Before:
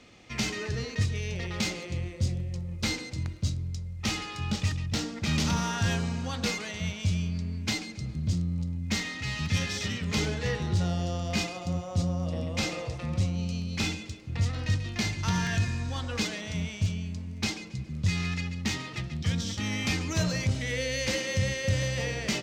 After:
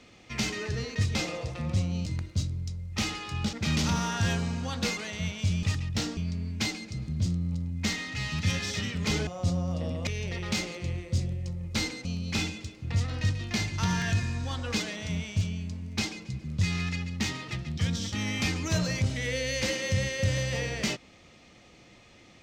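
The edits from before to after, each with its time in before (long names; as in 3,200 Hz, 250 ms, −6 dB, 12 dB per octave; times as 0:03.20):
0:01.15–0:03.13: swap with 0:12.59–0:13.50
0:04.60–0:05.14: move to 0:07.24
0:10.34–0:11.79: remove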